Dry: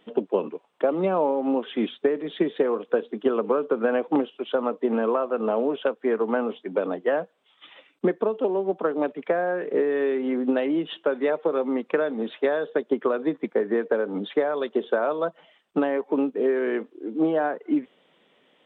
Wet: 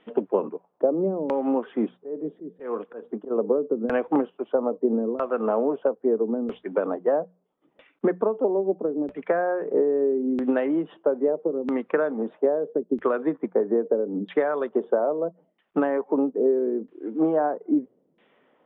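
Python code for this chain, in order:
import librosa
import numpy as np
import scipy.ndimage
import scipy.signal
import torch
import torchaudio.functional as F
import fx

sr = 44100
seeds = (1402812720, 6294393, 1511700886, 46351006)

y = fx.filter_lfo_lowpass(x, sr, shape='saw_down', hz=0.77, low_hz=270.0, high_hz=2500.0, q=1.1)
y = fx.hum_notches(y, sr, base_hz=60, count=3)
y = fx.auto_swell(y, sr, attack_ms=202.0, at=(2.0, 3.3), fade=0.02)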